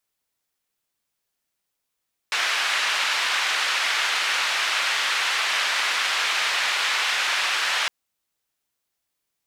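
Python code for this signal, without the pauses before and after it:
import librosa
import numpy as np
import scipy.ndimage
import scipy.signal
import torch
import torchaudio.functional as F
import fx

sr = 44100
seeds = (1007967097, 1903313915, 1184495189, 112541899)

y = fx.band_noise(sr, seeds[0], length_s=5.56, low_hz=1200.0, high_hz=2900.0, level_db=-23.5)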